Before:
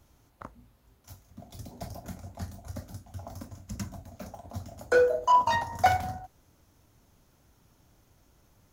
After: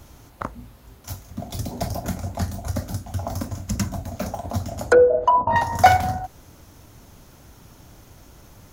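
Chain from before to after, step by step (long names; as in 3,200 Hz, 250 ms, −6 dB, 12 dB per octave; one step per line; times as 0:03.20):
0:04.69–0:05.56: treble cut that deepens with the level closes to 670 Hz, closed at −20 dBFS
in parallel at +2.5 dB: downward compressor, threshold −40 dBFS, peak gain reduction 21.5 dB
on the sum: level +8 dB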